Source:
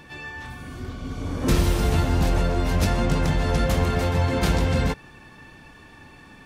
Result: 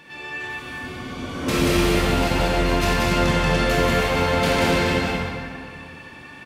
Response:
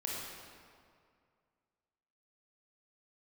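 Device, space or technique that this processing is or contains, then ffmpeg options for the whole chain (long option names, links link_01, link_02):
stadium PA: -filter_complex "[0:a]highpass=frequency=200:poles=1,equalizer=frequency=2600:width_type=o:width=1.2:gain=6,aecho=1:1:183.7|250.7:0.708|0.355[link_01];[1:a]atrim=start_sample=2205[link_02];[link_01][link_02]afir=irnorm=-1:irlink=0"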